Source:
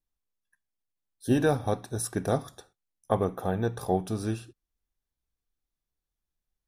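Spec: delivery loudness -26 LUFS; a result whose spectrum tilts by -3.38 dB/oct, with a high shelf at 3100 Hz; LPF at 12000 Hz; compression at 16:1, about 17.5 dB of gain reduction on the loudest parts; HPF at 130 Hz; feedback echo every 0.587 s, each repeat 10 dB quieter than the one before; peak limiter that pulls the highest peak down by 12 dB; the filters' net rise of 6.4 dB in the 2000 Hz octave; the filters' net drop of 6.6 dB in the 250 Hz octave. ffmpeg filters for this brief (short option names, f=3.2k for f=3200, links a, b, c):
-af "highpass=130,lowpass=12k,equalizer=f=250:t=o:g=-8.5,equalizer=f=2k:t=o:g=6.5,highshelf=f=3.1k:g=9,acompressor=threshold=-37dB:ratio=16,alimiter=level_in=9dB:limit=-24dB:level=0:latency=1,volume=-9dB,aecho=1:1:587|1174|1761|2348:0.316|0.101|0.0324|0.0104,volume=20dB"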